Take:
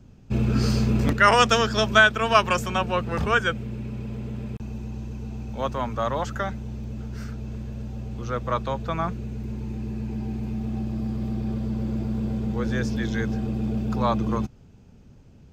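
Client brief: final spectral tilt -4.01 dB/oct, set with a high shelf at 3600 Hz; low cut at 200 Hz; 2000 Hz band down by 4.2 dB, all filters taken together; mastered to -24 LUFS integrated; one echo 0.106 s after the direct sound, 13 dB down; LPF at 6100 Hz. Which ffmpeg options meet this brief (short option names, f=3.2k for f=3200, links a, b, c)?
-af "highpass=200,lowpass=6.1k,equalizer=f=2k:t=o:g=-4.5,highshelf=f=3.6k:g=-8,aecho=1:1:106:0.224,volume=3dB"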